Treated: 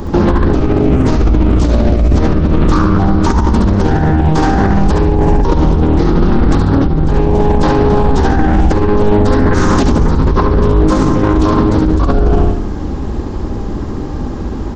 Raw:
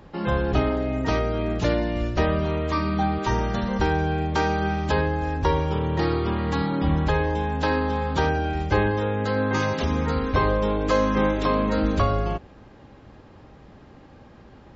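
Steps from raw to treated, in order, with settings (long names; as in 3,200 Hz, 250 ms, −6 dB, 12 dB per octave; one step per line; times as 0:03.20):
sub-octave generator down 1 octave, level +3 dB
flat-topped bell 1,200 Hz −13 dB 2.8 octaves
repeating echo 70 ms, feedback 36%, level −3.5 dB
compressor whose output falls as the input rises −25 dBFS, ratio −1
octave-band graphic EQ 125/1,000/4,000 Hz −11/+7/−8 dB
boost into a limiter +23.5 dB
highs frequency-modulated by the lows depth 0.45 ms
level −1 dB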